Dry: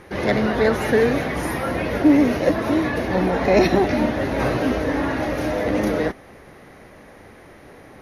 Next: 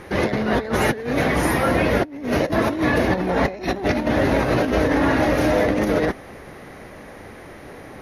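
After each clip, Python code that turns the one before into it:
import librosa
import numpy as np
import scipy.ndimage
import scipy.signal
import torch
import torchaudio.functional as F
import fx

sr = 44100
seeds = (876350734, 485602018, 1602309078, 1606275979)

y = fx.over_compress(x, sr, threshold_db=-22.0, ratio=-0.5)
y = y * librosa.db_to_amplitude(2.5)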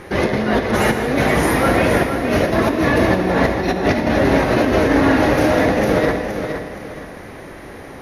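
y = fx.echo_feedback(x, sr, ms=468, feedback_pct=33, wet_db=-7.5)
y = fx.rev_gated(y, sr, seeds[0], gate_ms=250, shape='flat', drr_db=7.0)
y = y * librosa.db_to_amplitude(2.5)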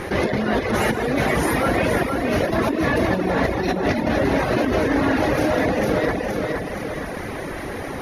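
y = fx.dereverb_blind(x, sr, rt60_s=0.59)
y = fx.env_flatten(y, sr, amount_pct=50)
y = y * librosa.db_to_amplitude(-4.5)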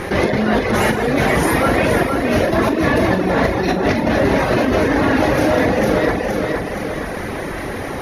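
y = fx.doubler(x, sr, ms=42.0, db=-10.0)
y = y * librosa.db_to_amplitude(4.0)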